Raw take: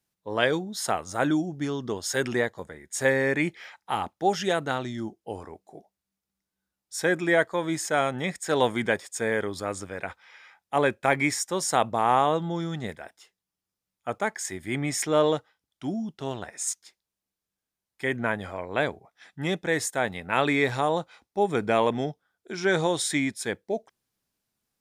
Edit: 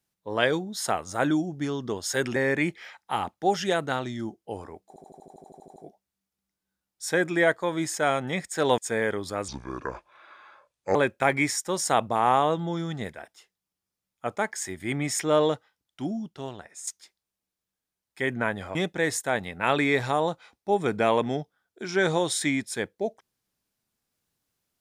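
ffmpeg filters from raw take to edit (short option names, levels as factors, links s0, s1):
-filter_complex "[0:a]asplit=18[s0][s1][s2][s3][s4][s5][s6][s7][s8][s9][s10][s11][s12][s13][s14][s15][s16][s17];[s0]atrim=end=2.362[s18];[s1]atrim=start=3.148:end=5.752[s19];[s2]atrim=start=5.668:end=5.752[s20];[s3]atrim=start=5.668:end=5.752[s21];[s4]atrim=start=5.668:end=5.752[s22];[s5]atrim=start=5.668:end=5.752[s23];[s6]atrim=start=5.668:end=5.752[s24];[s7]atrim=start=5.668:end=5.752[s25];[s8]atrim=start=5.668:end=5.752[s26];[s9]atrim=start=5.668:end=5.752[s27];[s10]atrim=start=5.668:end=5.752[s28];[s11]atrim=start=5.668:end=5.752[s29];[s12]atrim=start=5.668:end=8.692[s30];[s13]atrim=start=9.078:end=9.784[s31];[s14]atrim=start=9.78:end=10.78,asetpts=PTS-STARTPTS,asetrate=29988,aresample=44100[s32];[s15]atrim=start=10.776:end=16.7,asetpts=PTS-STARTPTS,afade=t=out:st=5.094:d=0.83:silence=0.266073[s33];[s16]atrim=start=16.7:end=18.582,asetpts=PTS-STARTPTS,afade=t=in:d=0.004:c=hsin:silence=0.266073[s34];[s17]atrim=start=19.438[s35];[s18][s19]acrossfade=d=0.004:c1=hsin:c2=hsin[s36];[s36][s20]acrossfade=d=0.004:c1=hsin:c2=hsin[s37];[s37][s21]acrossfade=d=0.004:c1=hsin:c2=hsin[s38];[s38][s22]acrossfade=d=0.004:c1=hsin:c2=hsin[s39];[s39][s23]acrossfade=d=0.004:c1=hsin:c2=hsin[s40];[s40][s24]acrossfade=d=0.004:c1=hsin:c2=hsin[s41];[s41][s25]acrossfade=d=0.004:c1=hsin:c2=hsin[s42];[s42][s26]acrossfade=d=0.004:c1=hsin:c2=hsin[s43];[s43][s27]acrossfade=d=0.004:c1=hsin:c2=hsin[s44];[s44][s28]acrossfade=d=0.004:c1=hsin:c2=hsin[s45];[s45][s29]acrossfade=d=0.004:c1=hsin:c2=hsin[s46];[s46][s30]acrossfade=d=0.004:c1=hsin:c2=hsin[s47];[s47][s31]acrossfade=d=0.004:c1=hsin:c2=hsin[s48];[s48][s32]acrossfade=d=0.004:c1=hsin:c2=hsin[s49];[s33][s34]concat=n=2:v=0:a=1[s50];[s49][s50]acrossfade=d=0.004:c1=hsin:c2=hsin[s51];[s51][s35]acrossfade=d=0.004:c1=hsin:c2=hsin"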